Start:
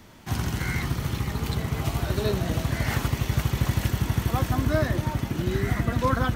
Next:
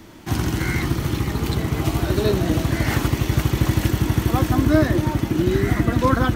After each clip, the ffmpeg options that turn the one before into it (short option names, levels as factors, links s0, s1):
-af "equalizer=f=320:t=o:w=0.38:g=10.5,volume=1.68"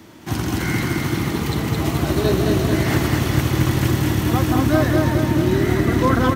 -af "highpass=82,aecho=1:1:216|432|648|864|1080|1296|1512|1728|1944:0.708|0.418|0.246|0.145|0.0858|0.0506|0.0299|0.0176|0.0104"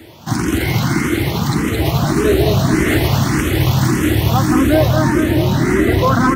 -filter_complex "[0:a]apsyclip=3.76,asplit=2[s0][s1];[s1]afreqshift=1.7[s2];[s0][s2]amix=inputs=2:normalize=1,volume=0.668"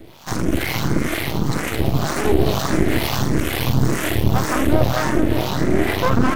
-filter_complex "[0:a]aeval=exprs='max(val(0),0)':c=same,acrossover=split=610[s0][s1];[s0]aeval=exprs='val(0)*(1-0.7/2+0.7/2*cos(2*PI*2.1*n/s))':c=same[s2];[s1]aeval=exprs='val(0)*(1-0.7/2-0.7/2*cos(2*PI*2.1*n/s))':c=same[s3];[s2][s3]amix=inputs=2:normalize=0,volume=1.41"